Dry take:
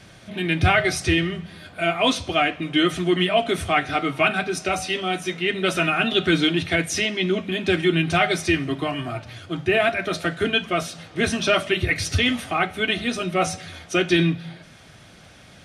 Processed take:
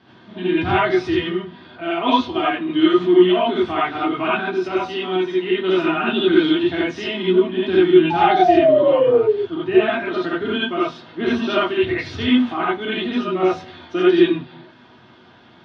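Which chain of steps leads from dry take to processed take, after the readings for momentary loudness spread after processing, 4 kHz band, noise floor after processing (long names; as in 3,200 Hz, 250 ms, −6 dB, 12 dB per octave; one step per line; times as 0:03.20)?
9 LU, −2.0 dB, −48 dBFS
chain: loudspeaker in its box 110–3,800 Hz, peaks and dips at 150 Hz −4 dB, 250 Hz +7 dB, 350 Hz +9 dB, 560 Hz −6 dB, 960 Hz +9 dB, 2,300 Hz −9 dB
sound drawn into the spectrogram fall, 0:08.10–0:09.37, 400–870 Hz −15 dBFS
reverb whose tail is shaped and stops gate 110 ms rising, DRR −7 dB
level −7 dB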